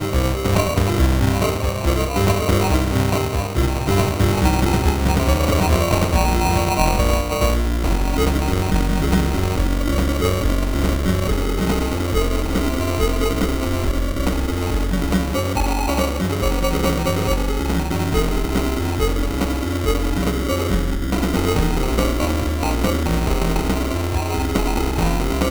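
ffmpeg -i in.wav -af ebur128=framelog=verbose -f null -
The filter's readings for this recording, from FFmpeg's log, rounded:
Integrated loudness:
  I:         -19.9 LUFS
  Threshold: -29.9 LUFS
Loudness range:
  LRA:         3.1 LU
  Threshold: -39.9 LUFS
  LRA low:   -21.1 LUFS
  LRA high:  -18.0 LUFS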